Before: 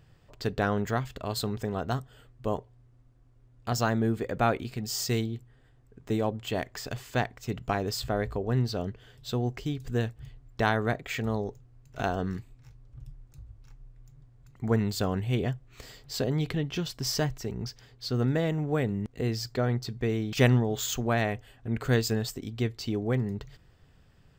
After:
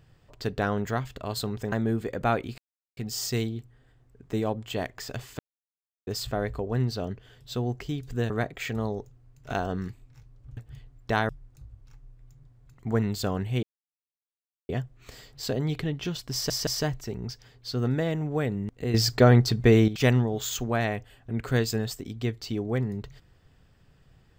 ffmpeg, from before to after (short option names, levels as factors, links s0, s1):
-filter_complex "[0:a]asplit=13[s0][s1][s2][s3][s4][s5][s6][s7][s8][s9][s10][s11][s12];[s0]atrim=end=1.722[s13];[s1]atrim=start=3.878:end=4.74,asetpts=PTS-STARTPTS,afade=t=out:st=0.858:d=0.004:c=hsin,apad=pad_dur=0.39[s14];[s2]atrim=start=4.74:end=7.16,asetpts=PTS-STARTPTS,afade=t=in:d=0.004:c=hsin,afade=t=out:st=2.416:d=0.004:c=hsin[s15];[s3]atrim=start=7.16:end=7.84,asetpts=PTS-STARTPTS,volume=0[s16];[s4]atrim=start=7.84:end=10.072,asetpts=PTS-STARTPTS,afade=t=in:d=0.004:c=hsin[s17];[s5]atrim=start=10.788:end=13.062[s18];[s6]atrim=start=10.068:end=10.792[s19];[s7]atrim=start=13.058:end=15.4,asetpts=PTS-STARTPTS,afade=t=out:st=2.338:d=0.004:c=hsin,apad=pad_dur=1.06[s20];[s8]atrim=start=15.4:end=17.212,asetpts=PTS-STARTPTS,afade=t=in:d=0.004:c=hsin[s21];[s9]atrim=start=17.038:end=17.212[s22];[s10]atrim=start=17.038:end=19.312[s23];[s11]atrim=start=19.308:end=20.252,asetpts=PTS-STARTPTS,volume=3.35[s24];[s12]atrim=start=20.248[s25];[s14][s15][s16][s17]concat=n=4:v=0:a=1[s26];[s13][s26]acrossfade=d=0.004:c1=hsin:c2=hsin[s27];[s27][s18]acrossfade=d=0.004:c1=hsin:c2=hsin[s28];[s28][s19]acrossfade=d=0.004:c1=hsin:c2=hsin[s29];[s20][s21]concat=n=2:v=0:a=1[s30];[s29][s30]acrossfade=d=0.004:c1=hsin:c2=hsin[s31];[s31][s22]acrossfade=d=0.004:c1=hsin:c2=hsin[s32];[s32][s23]acrossfade=d=0.004:c1=hsin:c2=hsin[s33];[s33][s24]acrossfade=d=0.004:c1=hsin:c2=hsin[s34];[s34][s25]acrossfade=d=0.004:c1=hsin:c2=hsin"